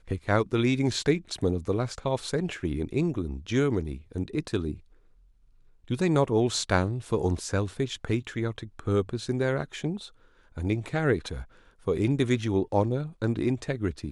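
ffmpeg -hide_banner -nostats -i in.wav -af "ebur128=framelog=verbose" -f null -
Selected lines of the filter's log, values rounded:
Integrated loudness:
  I:         -28.2 LUFS
  Threshold: -38.7 LUFS
Loudness range:
  LRA:         3.1 LU
  Threshold: -49.1 LUFS
  LRA low:   -30.9 LUFS
  LRA high:  -27.8 LUFS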